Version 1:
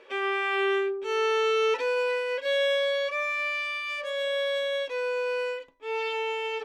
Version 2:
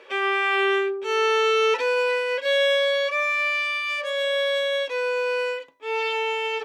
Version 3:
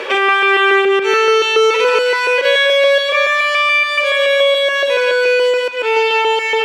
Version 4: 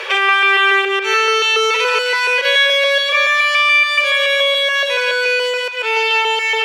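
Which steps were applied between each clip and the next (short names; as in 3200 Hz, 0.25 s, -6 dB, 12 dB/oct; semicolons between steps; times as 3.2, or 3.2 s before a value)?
HPF 110 Hz 12 dB/oct; low shelf 340 Hz -7 dB; gain +6 dB
reverse delay 0.142 s, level -2 dB; delay with a stepping band-pass 0.176 s, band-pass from 1300 Hz, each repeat 0.7 oct, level -9 dB; three-band squash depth 70%; gain +7.5 dB
elliptic high-pass 390 Hz; tilt shelf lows -6.5 dB, about 900 Hz; notch 7700 Hz, Q 16; gain -2.5 dB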